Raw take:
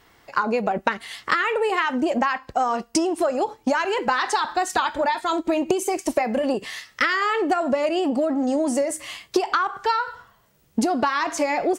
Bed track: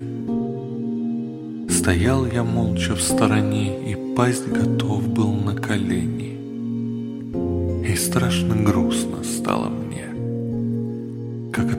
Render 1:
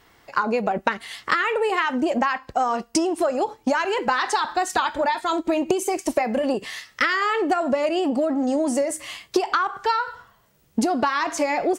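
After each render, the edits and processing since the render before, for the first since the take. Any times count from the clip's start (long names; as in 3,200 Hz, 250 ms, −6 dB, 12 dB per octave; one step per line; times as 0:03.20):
no processing that can be heard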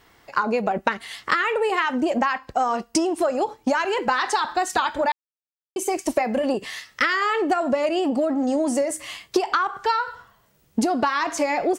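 0:05.12–0:05.76: silence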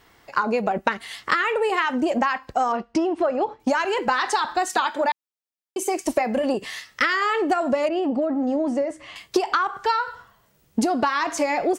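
0:02.72–0:03.60: low-pass filter 2,900 Hz
0:04.69–0:06.01: high-pass filter 200 Hz 24 dB per octave
0:07.88–0:09.16: head-to-tape spacing loss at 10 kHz 23 dB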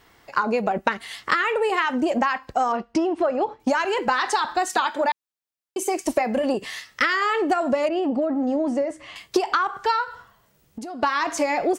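0:10.04–0:11.03: downward compressor, threshold −32 dBFS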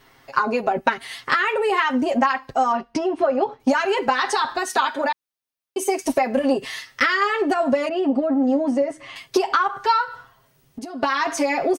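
notch filter 7,400 Hz, Q 9.5
comb filter 7.5 ms, depth 77%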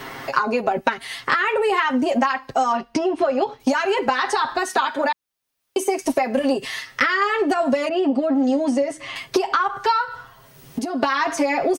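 multiband upward and downward compressor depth 70%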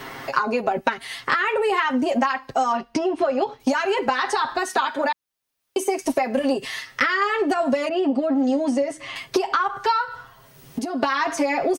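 level −1.5 dB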